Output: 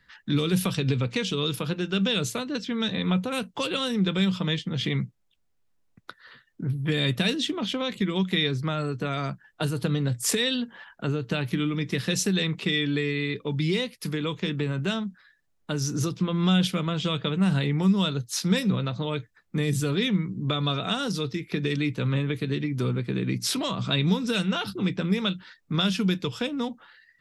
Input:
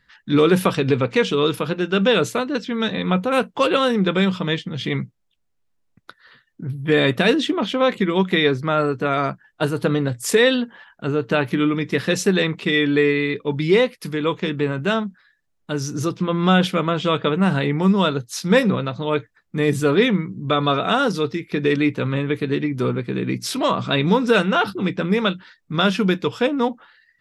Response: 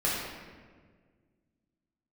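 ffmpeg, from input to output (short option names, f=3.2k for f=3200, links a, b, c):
-filter_complex "[0:a]acrossover=split=190|3000[a][b][c];[b]acompressor=threshold=-30dB:ratio=6[d];[a][d][c]amix=inputs=3:normalize=0"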